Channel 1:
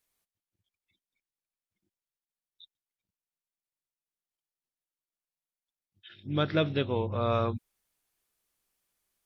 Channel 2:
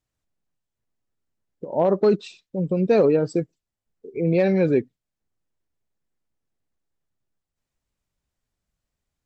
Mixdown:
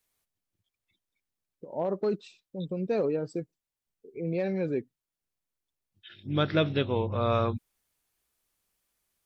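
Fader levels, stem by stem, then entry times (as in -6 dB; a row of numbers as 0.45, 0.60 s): +1.5, -10.5 dB; 0.00, 0.00 s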